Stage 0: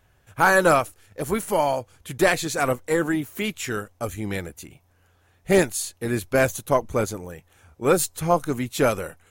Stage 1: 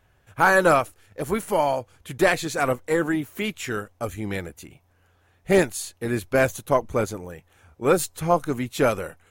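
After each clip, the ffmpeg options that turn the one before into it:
-af "bass=f=250:g=-1,treble=f=4000:g=-4"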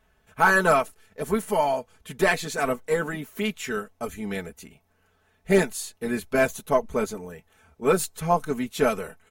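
-af "aecho=1:1:4.6:0.78,volume=0.668"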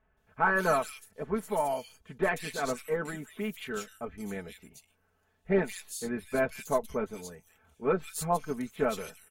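-filter_complex "[0:a]acrossover=split=2600[s0][s1];[s1]adelay=170[s2];[s0][s2]amix=inputs=2:normalize=0,volume=0.473"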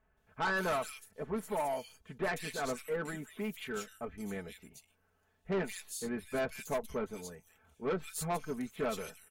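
-af "asoftclip=type=tanh:threshold=0.0501,volume=0.794"

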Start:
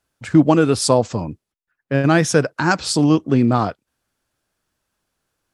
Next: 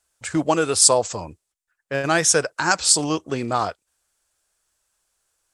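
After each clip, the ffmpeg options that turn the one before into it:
-af "equalizer=f=125:t=o:w=1:g=-10,equalizer=f=250:t=o:w=1:g=-11,equalizer=f=8000:t=o:w=1:g=12,volume=0.891"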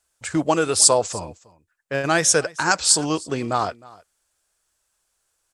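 -af "aecho=1:1:310:0.075"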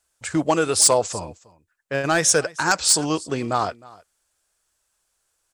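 -af "asoftclip=type=hard:threshold=0.355"

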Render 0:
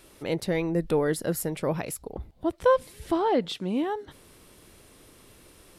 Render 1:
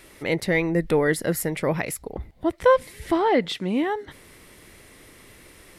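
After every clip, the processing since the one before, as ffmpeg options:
-af "equalizer=f=2000:t=o:w=0.41:g=10.5,volume=1.5"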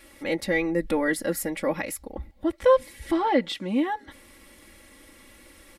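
-af "aecho=1:1:3.6:0.9,volume=0.562"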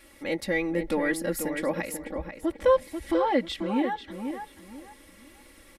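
-filter_complex "[0:a]asplit=2[s0][s1];[s1]adelay=489,lowpass=f=2700:p=1,volume=0.447,asplit=2[s2][s3];[s3]adelay=489,lowpass=f=2700:p=1,volume=0.28,asplit=2[s4][s5];[s5]adelay=489,lowpass=f=2700:p=1,volume=0.28[s6];[s0][s2][s4][s6]amix=inputs=4:normalize=0,volume=0.75"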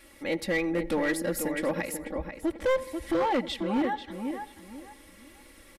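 -filter_complex "[0:a]asplit=2[s0][s1];[s1]adelay=88,lowpass=f=2500:p=1,volume=0.1,asplit=2[s2][s3];[s3]adelay=88,lowpass=f=2500:p=1,volume=0.53,asplit=2[s4][s5];[s5]adelay=88,lowpass=f=2500:p=1,volume=0.53,asplit=2[s6][s7];[s7]adelay=88,lowpass=f=2500:p=1,volume=0.53[s8];[s0][s2][s4][s6][s8]amix=inputs=5:normalize=0,asoftclip=type=hard:threshold=0.0841"

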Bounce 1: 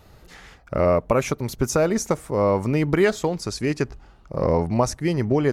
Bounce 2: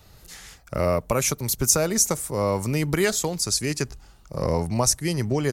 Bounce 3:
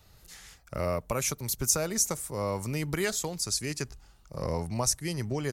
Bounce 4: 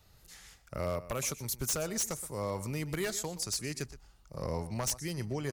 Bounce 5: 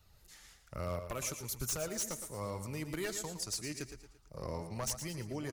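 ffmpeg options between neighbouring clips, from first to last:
-filter_complex "[0:a]firequalizer=gain_entry='entry(130,0);entry(270,-4);entry(4200,5)':delay=0.05:min_phase=1,acrossover=split=190|6800[s0][s1][s2];[s2]dynaudnorm=f=150:g=3:m=3.98[s3];[s0][s1][s3]amix=inputs=3:normalize=0,volume=0.891"
-af "equalizer=f=330:w=0.46:g=-2.5,volume=0.501"
-filter_complex "[0:a]asplit=2[s0][s1];[s1]adelay=122.4,volume=0.158,highshelf=f=4000:g=-2.76[s2];[s0][s2]amix=inputs=2:normalize=0,aeval=exprs='0.0891*(abs(mod(val(0)/0.0891+3,4)-2)-1)':c=same,volume=0.631"
-filter_complex "[0:a]flanger=delay=0.7:depth=2.7:regen=61:speed=1.2:shape=sinusoidal,asplit=2[s0][s1];[s1]aecho=0:1:113|226|339|452:0.299|0.122|0.0502|0.0206[s2];[s0][s2]amix=inputs=2:normalize=0"

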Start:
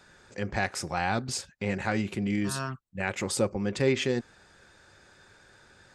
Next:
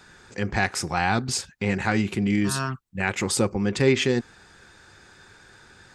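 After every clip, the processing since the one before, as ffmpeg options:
-af "equalizer=f=580:w=4.6:g=-8,volume=2"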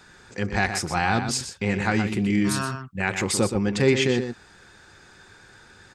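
-filter_complex "[0:a]asplit=2[s0][s1];[s1]adelay=122.4,volume=0.398,highshelf=f=4000:g=-2.76[s2];[s0][s2]amix=inputs=2:normalize=0"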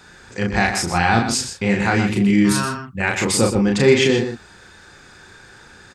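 -filter_complex "[0:a]asplit=2[s0][s1];[s1]adelay=35,volume=0.708[s2];[s0][s2]amix=inputs=2:normalize=0,volume=1.58"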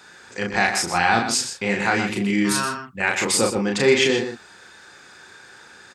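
-af "highpass=f=410:p=1"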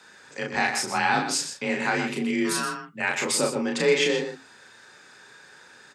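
-af "flanger=delay=6.5:depth=4.1:regen=-80:speed=0.34:shape=sinusoidal,afreqshift=32"

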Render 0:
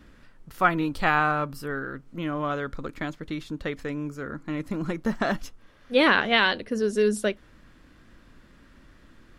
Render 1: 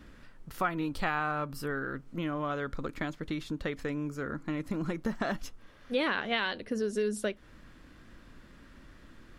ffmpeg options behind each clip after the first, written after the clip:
-af "acompressor=threshold=0.0282:ratio=2.5"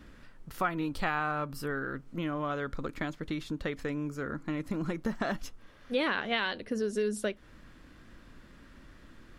-af anull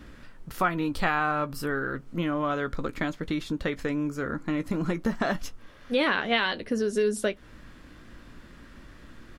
-filter_complex "[0:a]asplit=2[s0][s1];[s1]adelay=17,volume=0.251[s2];[s0][s2]amix=inputs=2:normalize=0,volume=1.78"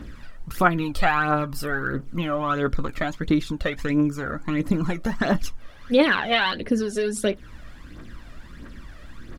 -af "aphaser=in_gain=1:out_gain=1:delay=1.7:decay=0.58:speed=1.5:type=triangular,volume=1.33"

